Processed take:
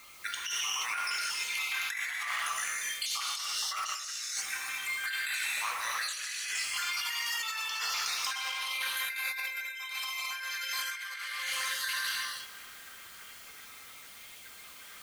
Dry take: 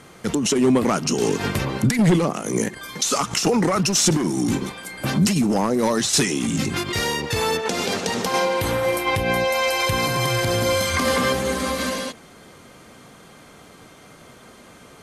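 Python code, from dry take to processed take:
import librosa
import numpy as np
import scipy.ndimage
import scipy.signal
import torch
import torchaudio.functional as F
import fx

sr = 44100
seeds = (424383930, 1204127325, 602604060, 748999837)

p1 = fx.spec_dropout(x, sr, seeds[0], share_pct=64)
p2 = scipy.signal.sosfilt(scipy.signal.butter(4, 1500.0, 'highpass', fs=sr, output='sos'), p1)
p3 = fx.peak_eq(p2, sr, hz=7700.0, db=-9.0, octaves=1.9)
p4 = p3 + fx.echo_feedback(p3, sr, ms=235, feedback_pct=53, wet_db=-19.5, dry=0)
p5 = fx.quant_dither(p4, sr, seeds[1], bits=10, dither='triangular')
p6 = fx.rev_gated(p5, sr, seeds[2], gate_ms=360, shape='flat', drr_db=-4.0)
y = fx.over_compress(p6, sr, threshold_db=-35.0, ratio=-1.0)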